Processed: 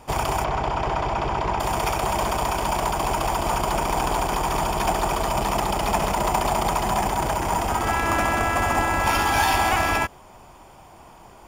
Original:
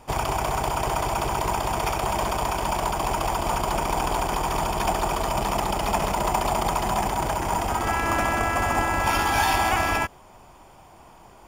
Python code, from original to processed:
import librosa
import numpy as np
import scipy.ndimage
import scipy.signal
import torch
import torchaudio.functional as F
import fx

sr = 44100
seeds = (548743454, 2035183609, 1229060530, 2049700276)

y = fx.diode_clip(x, sr, knee_db=-13.0)
y = fx.air_absorb(y, sr, metres=160.0, at=(0.44, 1.6))
y = y * 10.0 ** (2.5 / 20.0)